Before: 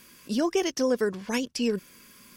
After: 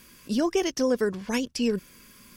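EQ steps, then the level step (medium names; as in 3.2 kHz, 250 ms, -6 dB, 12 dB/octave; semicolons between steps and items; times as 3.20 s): bass shelf 95 Hz +11 dB; 0.0 dB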